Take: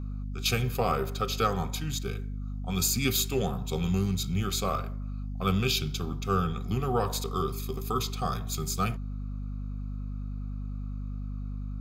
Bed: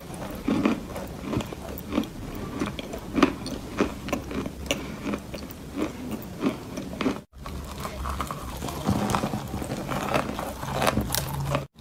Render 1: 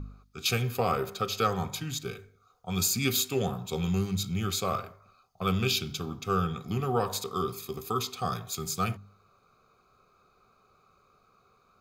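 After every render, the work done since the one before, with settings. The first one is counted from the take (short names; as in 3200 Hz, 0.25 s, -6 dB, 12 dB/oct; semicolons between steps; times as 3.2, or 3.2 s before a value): de-hum 50 Hz, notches 5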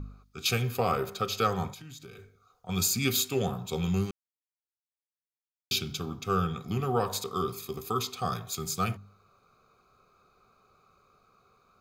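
1.71–2.69 compressor 12:1, threshold -42 dBFS; 4.11–5.71 mute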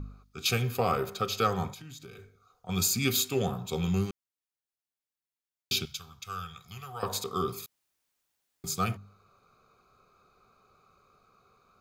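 5.85–7.03 passive tone stack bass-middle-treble 10-0-10; 7.66–8.64 room tone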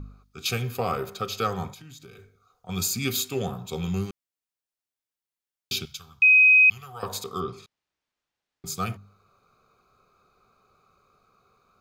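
6.22–6.7 bleep 2520 Hz -12 dBFS; 7.4–8.66 air absorption 130 m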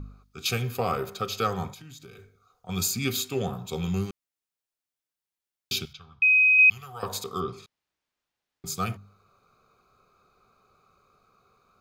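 2.91–3.53 high shelf 5400 Hz -4 dB; 5.93–6.59 air absorption 250 m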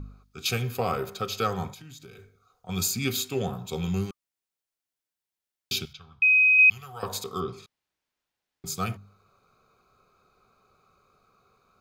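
notch 1200 Hz, Q 28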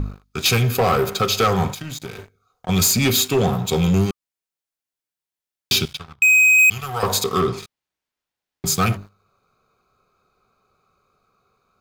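sample leveller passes 3; in parallel at -3 dB: compressor, threshold -26 dBFS, peak gain reduction 11.5 dB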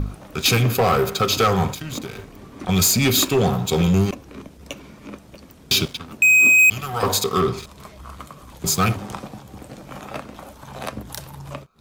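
add bed -7.5 dB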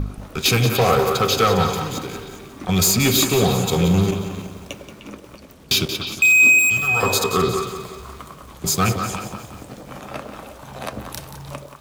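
delay with a stepping band-pass 0.101 s, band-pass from 440 Hz, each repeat 1.4 oct, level -3 dB; lo-fi delay 0.179 s, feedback 55%, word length 7-bit, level -10 dB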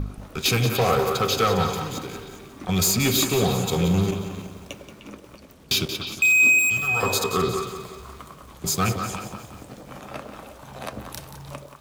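gain -4 dB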